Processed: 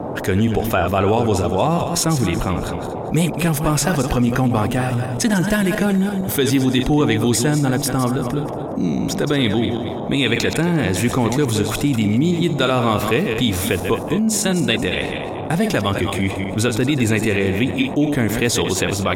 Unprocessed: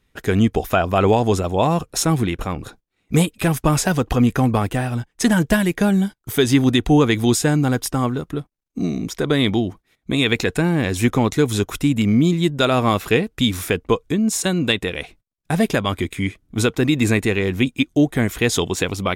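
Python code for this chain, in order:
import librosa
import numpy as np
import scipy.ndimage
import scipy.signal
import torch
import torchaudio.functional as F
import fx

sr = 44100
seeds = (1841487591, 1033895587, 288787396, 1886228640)

y = fx.reverse_delay_fb(x, sr, ms=115, feedback_pct=47, wet_db=-9.0)
y = fx.dmg_noise_band(y, sr, seeds[0], low_hz=92.0, high_hz=790.0, level_db=-36.0)
y = fx.env_flatten(y, sr, amount_pct=50)
y = y * 10.0 ** (-3.5 / 20.0)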